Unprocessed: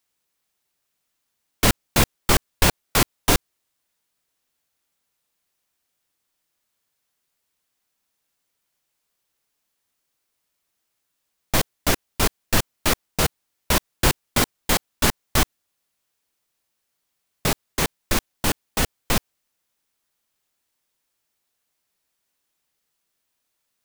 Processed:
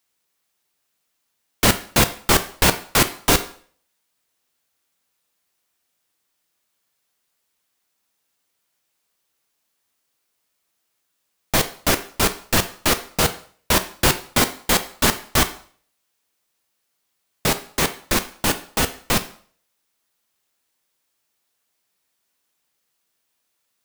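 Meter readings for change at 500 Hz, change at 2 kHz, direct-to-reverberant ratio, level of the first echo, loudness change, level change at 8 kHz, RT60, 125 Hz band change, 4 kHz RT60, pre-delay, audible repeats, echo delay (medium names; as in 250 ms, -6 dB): +3.0 dB, +3.0 dB, 8.5 dB, no echo, +2.5 dB, +3.0 dB, 0.50 s, 0.0 dB, 0.45 s, 4 ms, no echo, no echo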